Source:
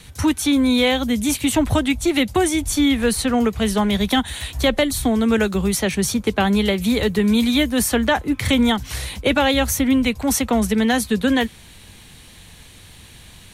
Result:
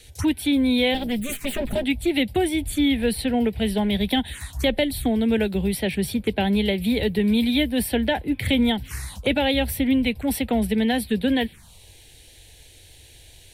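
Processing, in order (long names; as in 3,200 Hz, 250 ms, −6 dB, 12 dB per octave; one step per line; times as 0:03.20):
0:00.94–0:01.84: lower of the sound and its delayed copy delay 4.9 ms
phaser swept by the level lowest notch 170 Hz, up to 1,200 Hz, full sweep at −18 dBFS
dynamic equaliser 890 Hz, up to +4 dB, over −34 dBFS, Q 0.9
level −3 dB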